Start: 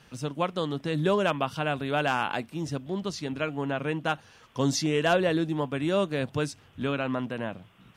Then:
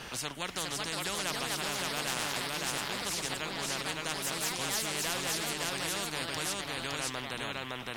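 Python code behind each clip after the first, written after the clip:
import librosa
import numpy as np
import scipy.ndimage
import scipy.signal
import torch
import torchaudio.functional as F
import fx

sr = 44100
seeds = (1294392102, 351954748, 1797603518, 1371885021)

y = fx.echo_pitch(x, sr, ms=447, semitones=3, count=2, db_per_echo=-6.0)
y = y + 10.0 ** (-4.0 / 20.0) * np.pad(y, (int(563 * sr / 1000.0), 0))[:len(y)]
y = fx.spectral_comp(y, sr, ratio=4.0)
y = y * 10.0 ** (-7.0 / 20.0)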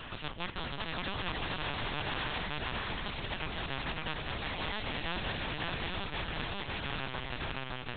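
y = fx.lpc_vocoder(x, sr, seeds[0], excitation='pitch_kept', order=8)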